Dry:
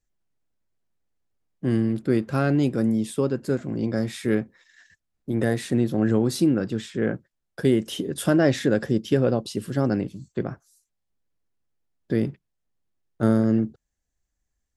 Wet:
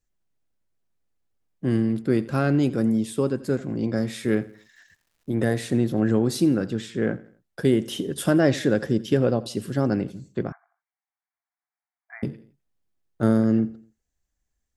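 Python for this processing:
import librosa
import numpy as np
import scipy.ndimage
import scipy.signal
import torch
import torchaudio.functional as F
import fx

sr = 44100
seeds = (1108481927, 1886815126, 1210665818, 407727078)

y = fx.echo_feedback(x, sr, ms=85, feedback_pct=39, wet_db=-19)
y = fx.dmg_crackle(y, sr, seeds[0], per_s=370.0, level_db=-57.0, at=(4.33, 5.38), fade=0.02)
y = fx.brickwall_bandpass(y, sr, low_hz=660.0, high_hz=2400.0, at=(10.52, 12.23))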